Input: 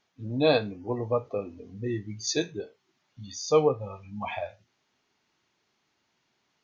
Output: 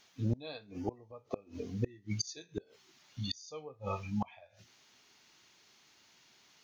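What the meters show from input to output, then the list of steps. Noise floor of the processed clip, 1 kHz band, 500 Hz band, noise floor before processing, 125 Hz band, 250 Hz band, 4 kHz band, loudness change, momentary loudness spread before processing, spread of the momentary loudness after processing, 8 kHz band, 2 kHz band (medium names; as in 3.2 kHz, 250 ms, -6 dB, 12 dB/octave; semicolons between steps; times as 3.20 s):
-66 dBFS, -11.0 dB, -17.0 dB, -75 dBFS, -3.0 dB, -7.0 dB, -8.0 dB, -11.0 dB, 17 LU, 10 LU, no reading, -14.5 dB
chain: treble shelf 2.3 kHz +11 dB; inverted gate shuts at -25 dBFS, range -29 dB; trim +4 dB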